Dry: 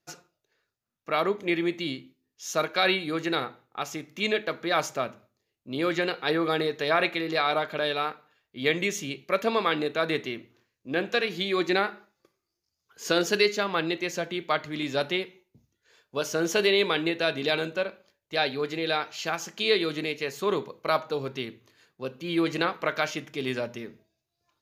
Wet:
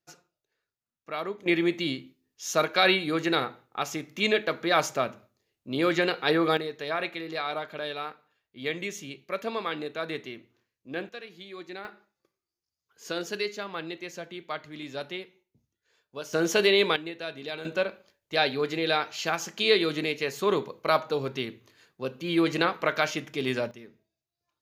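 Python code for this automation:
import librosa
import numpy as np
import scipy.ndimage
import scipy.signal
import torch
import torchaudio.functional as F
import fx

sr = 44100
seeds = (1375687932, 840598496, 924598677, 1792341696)

y = fx.gain(x, sr, db=fx.steps((0.0, -7.5), (1.46, 2.0), (6.57, -6.5), (11.09, -16.0), (11.85, -8.5), (16.33, 1.0), (16.96, -10.0), (17.65, 1.5), (23.71, -9.0)))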